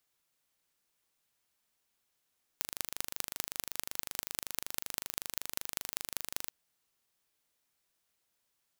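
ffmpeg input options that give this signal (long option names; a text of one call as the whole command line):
ffmpeg -f lavfi -i "aevalsrc='0.596*eq(mod(n,1743),0)*(0.5+0.5*eq(mod(n,8715),0))':duration=3.9:sample_rate=44100" out.wav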